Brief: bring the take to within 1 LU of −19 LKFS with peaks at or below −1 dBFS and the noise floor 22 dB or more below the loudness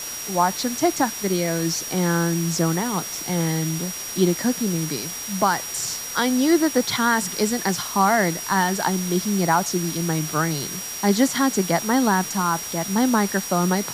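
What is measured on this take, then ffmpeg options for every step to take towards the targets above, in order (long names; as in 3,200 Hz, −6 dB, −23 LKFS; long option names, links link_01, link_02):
interfering tone 5,700 Hz; level of the tone −32 dBFS; background noise floor −32 dBFS; target noise floor −44 dBFS; integrated loudness −22.0 LKFS; sample peak −6.5 dBFS; target loudness −19.0 LKFS
→ -af "bandreject=frequency=5700:width=30"
-af "afftdn=noise_reduction=12:noise_floor=-32"
-af "volume=3dB"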